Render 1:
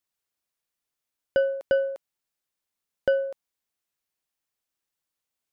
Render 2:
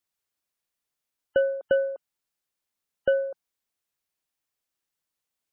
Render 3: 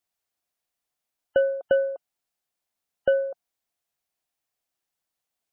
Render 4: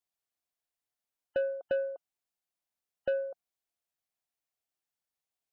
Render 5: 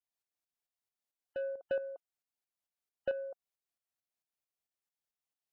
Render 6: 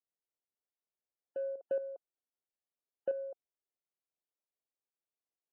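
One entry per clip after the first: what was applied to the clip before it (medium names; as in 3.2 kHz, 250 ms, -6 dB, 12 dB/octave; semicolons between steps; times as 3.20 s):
spectral gate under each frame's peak -30 dB strong
peaking EQ 710 Hz +7.5 dB 0.36 oct
saturation -14.5 dBFS, distortion -19 dB; trim -7.5 dB
tremolo saw up 4.5 Hz, depth 65%; trim -2 dB
band-pass filter 430 Hz, Q 1.3; trim +1.5 dB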